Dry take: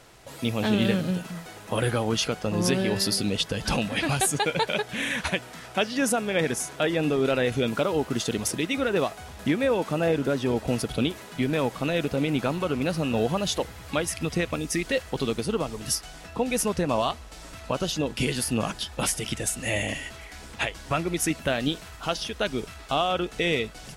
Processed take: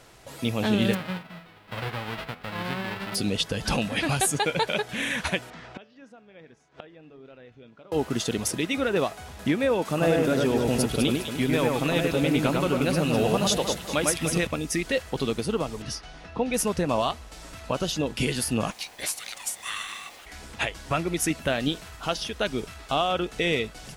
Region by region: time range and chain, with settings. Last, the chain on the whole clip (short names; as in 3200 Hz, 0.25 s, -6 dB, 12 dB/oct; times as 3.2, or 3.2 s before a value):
0.93–3.14 spectral whitening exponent 0.1 + air absorption 450 m + de-hum 82.76 Hz, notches 32
5.5–7.92 de-hum 146.2 Hz, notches 36 + flipped gate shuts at -26 dBFS, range -24 dB + air absorption 160 m
9.85–14.47 high shelf 4800 Hz +6.5 dB + echo with dull and thin repeats by turns 0.101 s, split 2500 Hz, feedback 62%, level -2 dB
15.82–16.54 air absorption 100 m + notch 7600 Hz, Q 6
18.7–20.25 steep high-pass 960 Hz 48 dB/oct + added noise pink -49 dBFS + ring modulator 770 Hz
whole clip: dry